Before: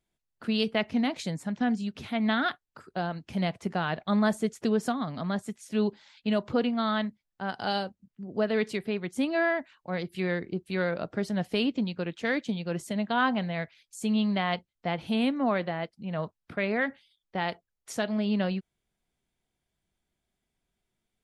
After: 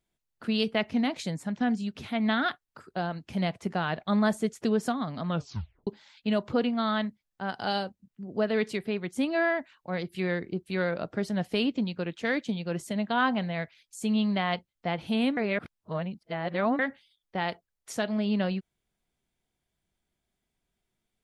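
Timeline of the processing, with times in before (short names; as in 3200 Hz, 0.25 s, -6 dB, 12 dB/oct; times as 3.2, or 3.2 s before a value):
5.26 tape stop 0.61 s
15.37–16.79 reverse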